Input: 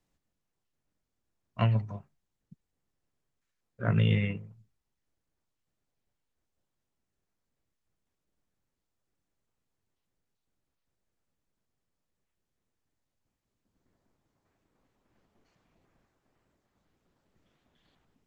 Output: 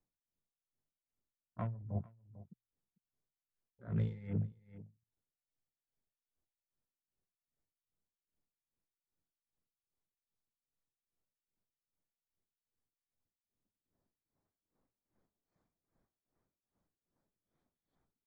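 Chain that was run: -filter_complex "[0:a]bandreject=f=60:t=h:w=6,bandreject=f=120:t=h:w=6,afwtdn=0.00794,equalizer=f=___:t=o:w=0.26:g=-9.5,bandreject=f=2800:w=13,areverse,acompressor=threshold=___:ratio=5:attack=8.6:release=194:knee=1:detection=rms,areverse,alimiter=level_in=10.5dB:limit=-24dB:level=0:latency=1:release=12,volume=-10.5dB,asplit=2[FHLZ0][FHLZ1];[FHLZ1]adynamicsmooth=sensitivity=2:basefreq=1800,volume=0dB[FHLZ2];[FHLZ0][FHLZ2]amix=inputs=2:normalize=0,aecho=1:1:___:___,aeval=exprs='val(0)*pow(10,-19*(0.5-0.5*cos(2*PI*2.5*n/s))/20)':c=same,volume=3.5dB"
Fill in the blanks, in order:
2800, -36dB, 447, 0.119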